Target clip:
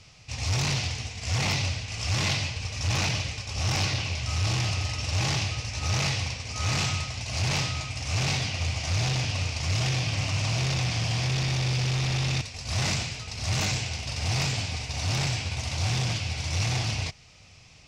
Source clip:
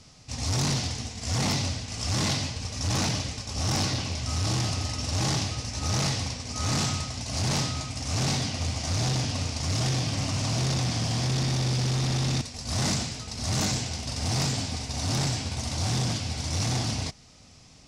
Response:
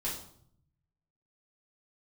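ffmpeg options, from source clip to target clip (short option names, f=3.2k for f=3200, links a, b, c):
-af "equalizer=f=100:t=o:w=0.67:g=4,equalizer=f=250:t=o:w=0.67:g=-9,equalizer=f=2.5k:t=o:w=0.67:g=9,equalizer=f=10k:t=o:w=0.67:g=-6,volume=-1dB"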